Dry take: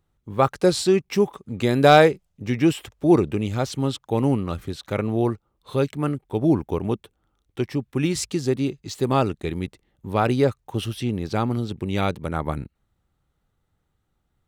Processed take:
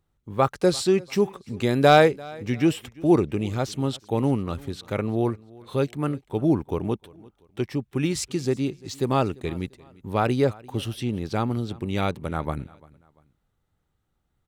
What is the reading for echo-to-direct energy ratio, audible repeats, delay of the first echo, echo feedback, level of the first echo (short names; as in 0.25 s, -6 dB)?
-22.5 dB, 2, 0.344 s, 36%, -23.0 dB